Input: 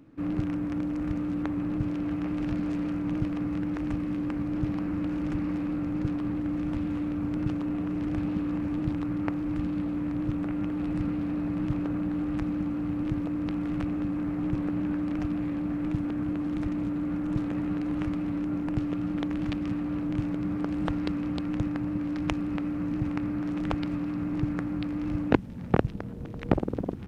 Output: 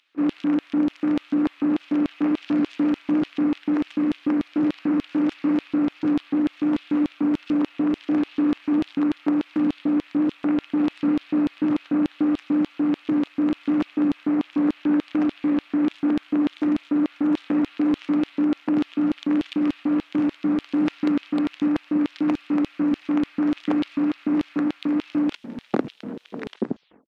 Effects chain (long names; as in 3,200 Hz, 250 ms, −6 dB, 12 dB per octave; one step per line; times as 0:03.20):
turntable brake at the end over 0.69 s
mid-hump overdrive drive 24 dB, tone 1,600 Hz, clips at −4.5 dBFS
auto-filter high-pass square 3.4 Hz 250–3,300 Hz
level −5.5 dB